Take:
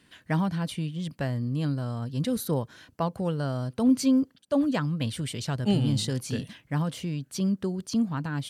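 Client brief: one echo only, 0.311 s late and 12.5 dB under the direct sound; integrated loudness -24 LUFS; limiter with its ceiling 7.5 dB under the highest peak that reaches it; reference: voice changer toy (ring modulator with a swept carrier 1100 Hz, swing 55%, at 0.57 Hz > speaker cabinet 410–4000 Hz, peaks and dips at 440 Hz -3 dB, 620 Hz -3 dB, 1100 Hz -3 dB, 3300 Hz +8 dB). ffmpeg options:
-af "alimiter=limit=-20.5dB:level=0:latency=1,aecho=1:1:311:0.237,aeval=exprs='val(0)*sin(2*PI*1100*n/s+1100*0.55/0.57*sin(2*PI*0.57*n/s))':c=same,highpass=410,equalizer=f=440:t=q:w=4:g=-3,equalizer=f=620:t=q:w=4:g=-3,equalizer=f=1.1k:t=q:w=4:g=-3,equalizer=f=3.3k:t=q:w=4:g=8,lowpass=f=4k:w=0.5412,lowpass=f=4k:w=1.3066,volume=9dB"

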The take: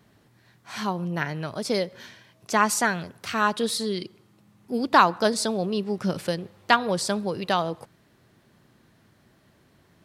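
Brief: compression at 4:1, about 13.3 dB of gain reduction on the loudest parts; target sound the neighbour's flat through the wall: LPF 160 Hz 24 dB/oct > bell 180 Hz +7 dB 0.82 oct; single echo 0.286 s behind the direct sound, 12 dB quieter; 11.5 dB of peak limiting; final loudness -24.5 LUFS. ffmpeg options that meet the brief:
-af "acompressor=threshold=-28dB:ratio=4,alimiter=level_in=1dB:limit=-24dB:level=0:latency=1,volume=-1dB,lowpass=f=160:w=0.5412,lowpass=f=160:w=1.3066,equalizer=f=180:t=o:w=0.82:g=7,aecho=1:1:286:0.251,volume=16dB"

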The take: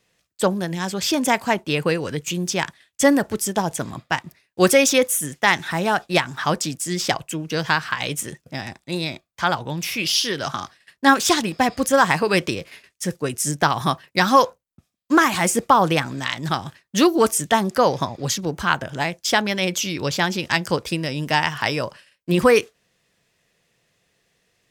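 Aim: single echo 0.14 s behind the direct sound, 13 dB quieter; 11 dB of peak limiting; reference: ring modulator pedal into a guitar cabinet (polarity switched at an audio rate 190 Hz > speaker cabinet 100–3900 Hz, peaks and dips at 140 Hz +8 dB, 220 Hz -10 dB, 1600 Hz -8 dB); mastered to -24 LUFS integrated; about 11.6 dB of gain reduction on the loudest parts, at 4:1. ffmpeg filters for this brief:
-af "acompressor=threshold=-24dB:ratio=4,alimiter=limit=-18dB:level=0:latency=1,aecho=1:1:140:0.224,aeval=exprs='val(0)*sgn(sin(2*PI*190*n/s))':c=same,highpass=100,equalizer=f=140:t=q:w=4:g=8,equalizer=f=220:t=q:w=4:g=-10,equalizer=f=1.6k:t=q:w=4:g=-8,lowpass=f=3.9k:w=0.5412,lowpass=f=3.9k:w=1.3066,volume=8dB"

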